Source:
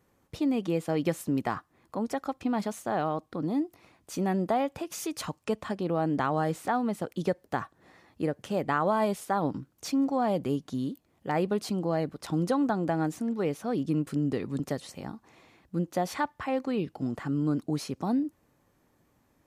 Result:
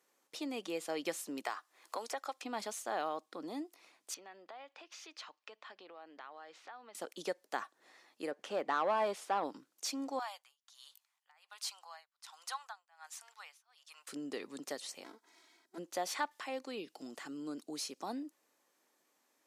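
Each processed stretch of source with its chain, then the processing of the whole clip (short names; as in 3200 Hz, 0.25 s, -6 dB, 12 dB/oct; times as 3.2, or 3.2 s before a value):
1.44–2.44 HPF 460 Hz + three-band squash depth 100%
4.14–6.95 HPF 1300 Hz 6 dB/oct + air absorption 230 m + compressor 3:1, threshold -42 dBFS
8.31–9.44 low shelf 200 Hz +7 dB + overdrive pedal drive 13 dB, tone 1100 Hz, clips at -14 dBFS
10.19–14.08 steep high-pass 840 Hz + tremolo 1.3 Hz, depth 97%
15.04–15.78 minimum comb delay 3.1 ms + notch 2700 Hz, Q 5.3 + notch comb 590 Hz
16.31–18.01 bell 1200 Hz -5 dB 2.1 oct + mismatched tape noise reduction encoder only
whole clip: Bessel high-pass 420 Hz, order 4; de-esser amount 75%; bell 6300 Hz +9 dB 2.7 oct; gain -7 dB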